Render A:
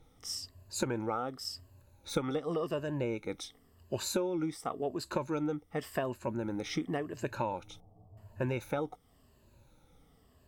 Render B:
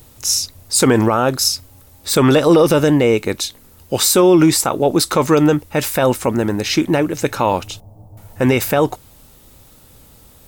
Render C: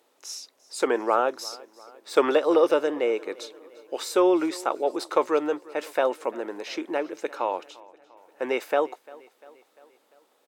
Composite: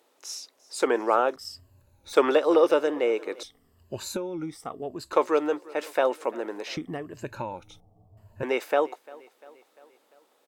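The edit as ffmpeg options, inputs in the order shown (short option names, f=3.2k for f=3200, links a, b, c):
-filter_complex "[0:a]asplit=3[a][b][c];[2:a]asplit=4[d][e][f][g];[d]atrim=end=1.362[h];[a]atrim=start=1.358:end=2.132[i];[e]atrim=start=2.128:end=3.432[j];[b]atrim=start=3.428:end=5.132[k];[f]atrim=start=5.128:end=6.772[l];[c]atrim=start=6.768:end=8.432[m];[g]atrim=start=8.428[n];[h][i]acrossfade=d=0.004:c1=hsin:c2=hsin[o];[o][j]acrossfade=d=0.004:c1=hsin:c2=hsin[p];[p][k]acrossfade=d=0.004:c1=hsin:c2=hsin[q];[q][l]acrossfade=d=0.004:c1=hsin:c2=hsin[r];[r][m]acrossfade=d=0.004:c1=hsin:c2=hsin[s];[s][n]acrossfade=d=0.004:c1=hsin:c2=hsin"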